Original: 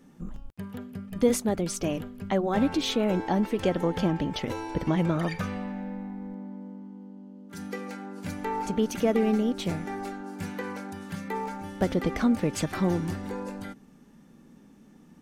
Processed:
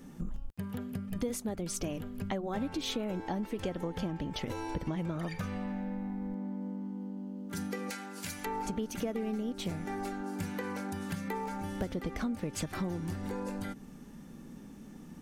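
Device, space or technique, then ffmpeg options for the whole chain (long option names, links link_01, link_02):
ASMR close-microphone chain: -filter_complex "[0:a]lowshelf=frequency=110:gain=7,acompressor=threshold=-38dB:ratio=4,highshelf=frequency=6800:gain=5,asettb=1/sr,asplit=3[link_01][link_02][link_03];[link_01]atrim=end=7.904[link_04];[link_02]atrim=start=7.9:end=8.46,asetpts=PTS-STARTPTS,afade=type=in:duration=0.004:curve=qsin,afade=type=out:start_time=0.556:duration=0.004:curve=qsin,tiltshelf=frequency=1200:gain=-8.5[link_05];[link_03]atrim=start=8.456[link_06];[link_04][link_05]acrossfade=duration=0.004:curve1=hsin:curve2=qsin[link_07];[link_07][link_06]acrossfade=duration=0.004:curve1=qsin:curve2=hsin,volume=3.5dB"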